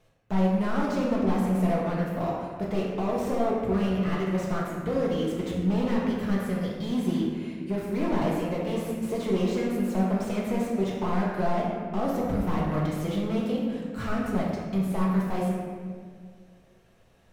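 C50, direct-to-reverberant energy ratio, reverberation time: 0.0 dB, -5.0 dB, 1.9 s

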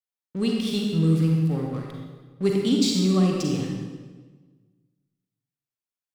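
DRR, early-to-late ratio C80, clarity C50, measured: -0.5 dB, 3.0 dB, 0.5 dB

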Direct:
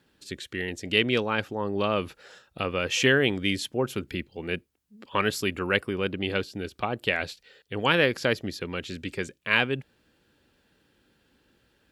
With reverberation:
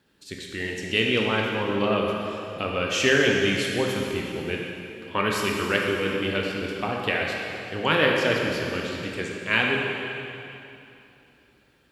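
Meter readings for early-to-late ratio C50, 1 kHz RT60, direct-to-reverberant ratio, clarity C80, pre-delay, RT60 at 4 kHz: 0.0 dB, 2.9 s, -1.5 dB, 1.5 dB, 7 ms, 2.7 s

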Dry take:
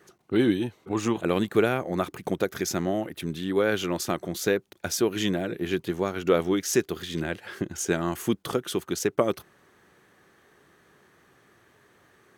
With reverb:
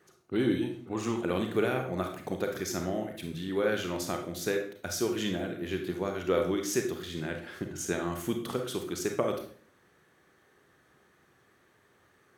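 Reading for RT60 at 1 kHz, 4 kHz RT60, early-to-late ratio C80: 0.45 s, 0.40 s, 11.5 dB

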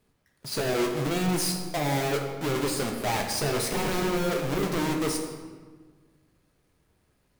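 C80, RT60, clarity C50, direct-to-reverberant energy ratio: 7.0 dB, 1.5 s, 5.0 dB, 2.0 dB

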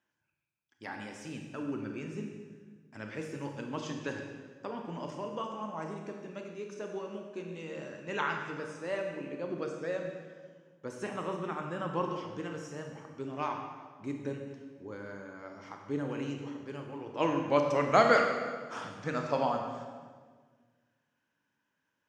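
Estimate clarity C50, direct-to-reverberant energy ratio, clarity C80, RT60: 4.0 dB, 2.5 dB, 5.5 dB, 1.6 s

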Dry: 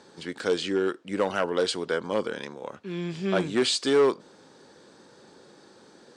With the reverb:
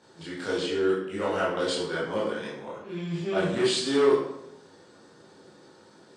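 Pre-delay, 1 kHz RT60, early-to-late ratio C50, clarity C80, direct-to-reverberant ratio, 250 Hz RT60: 15 ms, 0.75 s, 2.0 dB, 5.5 dB, -8.5 dB, 0.95 s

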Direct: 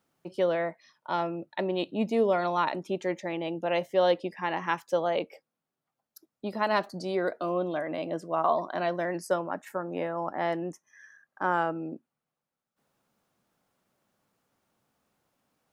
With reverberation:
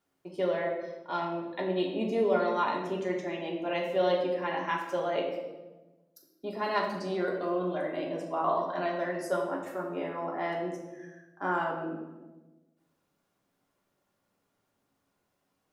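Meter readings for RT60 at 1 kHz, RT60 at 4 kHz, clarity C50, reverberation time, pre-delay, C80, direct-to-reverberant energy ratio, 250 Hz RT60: 1.0 s, 0.80 s, 4.0 dB, 1.2 s, 3 ms, 6.0 dB, -3.0 dB, 1.6 s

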